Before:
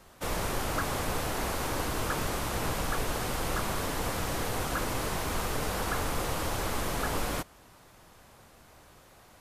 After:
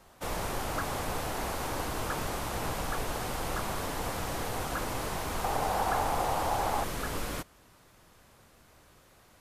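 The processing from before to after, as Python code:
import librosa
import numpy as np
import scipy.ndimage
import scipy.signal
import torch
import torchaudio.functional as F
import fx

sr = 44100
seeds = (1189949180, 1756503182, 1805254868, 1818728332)

y = fx.peak_eq(x, sr, hz=790.0, db=fx.steps((0.0, 3.5), (5.44, 14.0), (6.84, -3.0)), octaves=0.74)
y = y * 10.0 ** (-3.0 / 20.0)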